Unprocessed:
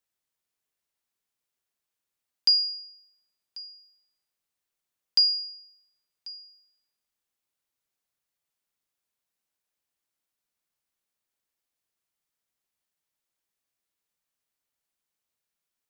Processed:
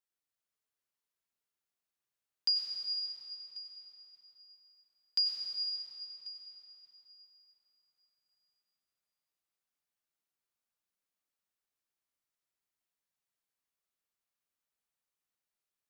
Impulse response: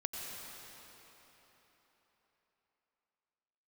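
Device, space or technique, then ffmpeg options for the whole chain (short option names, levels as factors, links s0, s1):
cathedral: -filter_complex "[0:a]equalizer=f=1300:t=o:w=0.77:g=2[s0];[1:a]atrim=start_sample=2205[s1];[s0][s1]afir=irnorm=-1:irlink=0,volume=0.422"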